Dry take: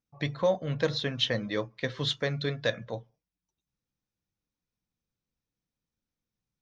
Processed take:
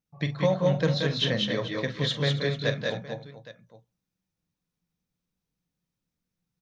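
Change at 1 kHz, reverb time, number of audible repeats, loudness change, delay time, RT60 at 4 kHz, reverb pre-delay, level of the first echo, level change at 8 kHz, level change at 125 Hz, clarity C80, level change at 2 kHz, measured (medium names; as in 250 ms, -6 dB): +2.5 dB, no reverb, 5, +3.5 dB, 43 ms, no reverb, no reverb, -11.0 dB, +2.5 dB, +6.5 dB, no reverb, +2.5 dB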